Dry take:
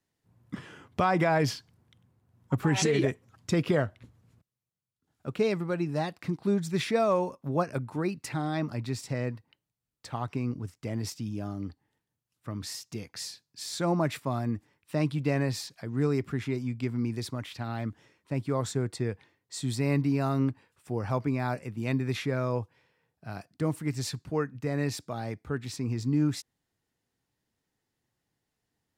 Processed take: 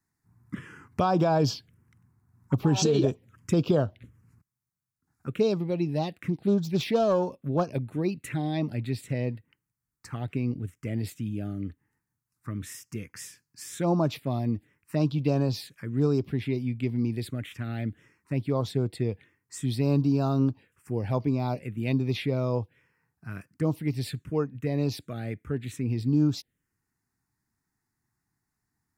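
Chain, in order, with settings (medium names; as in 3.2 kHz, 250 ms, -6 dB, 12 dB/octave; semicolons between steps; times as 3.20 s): 6.02–7.65 s: self-modulated delay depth 0.13 ms; touch-sensitive phaser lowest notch 540 Hz, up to 2 kHz, full sweep at -23.5 dBFS; trim +3 dB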